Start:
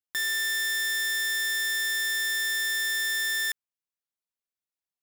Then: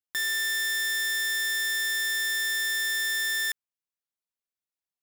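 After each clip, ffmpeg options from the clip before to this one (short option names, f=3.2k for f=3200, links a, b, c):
-af anull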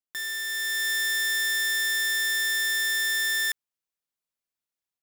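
-af "dynaudnorm=f=450:g=3:m=6.5dB,volume=-4.5dB"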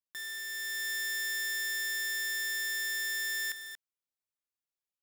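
-af "aecho=1:1:233:0.316,volume=-8dB"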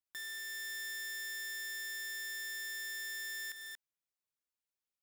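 -af "acompressor=threshold=-37dB:ratio=6,volume=-2.5dB"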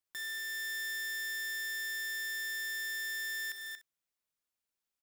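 -af "aecho=1:1:36|63:0.168|0.2,volume=2.5dB"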